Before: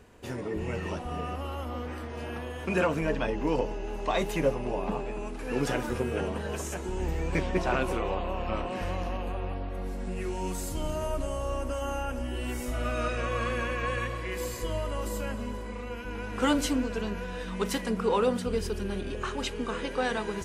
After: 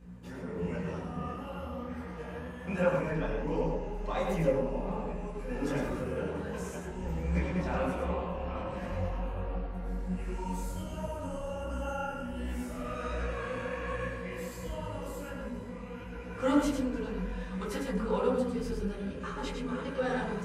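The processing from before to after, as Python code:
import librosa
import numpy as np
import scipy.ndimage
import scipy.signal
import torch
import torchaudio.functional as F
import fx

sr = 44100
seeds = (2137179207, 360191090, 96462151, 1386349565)

y = x + 10.0 ** (-5.0 / 20.0) * np.pad(x, (int(103 * sr / 1000.0), 0))[:len(x)]
y = fx.add_hum(y, sr, base_hz=60, snr_db=14)
y = fx.rev_fdn(y, sr, rt60_s=0.64, lf_ratio=1.2, hf_ratio=0.25, size_ms=34.0, drr_db=-3.0)
y = fx.detune_double(y, sr, cents=47)
y = y * 10.0 ** (-7.5 / 20.0)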